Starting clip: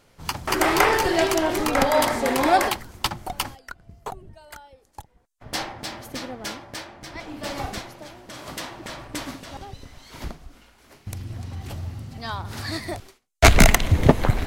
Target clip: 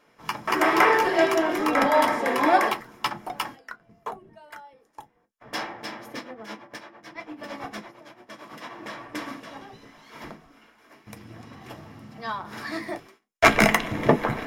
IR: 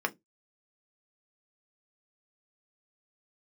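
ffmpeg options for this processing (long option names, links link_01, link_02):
-filter_complex "[0:a]asplit=3[link_01][link_02][link_03];[link_01]afade=type=out:start_time=6.19:duration=0.02[link_04];[link_02]tremolo=f=8.9:d=0.81,afade=type=in:start_time=6.19:duration=0.02,afade=type=out:start_time=8.69:duration=0.02[link_05];[link_03]afade=type=in:start_time=8.69:duration=0.02[link_06];[link_04][link_05][link_06]amix=inputs=3:normalize=0[link_07];[1:a]atrim=start_sample=2205,atrim=end_sample=3087[link_08];[link_07][link_08]afir=irnorm=-1:irlink=0,volume=-7.5dB"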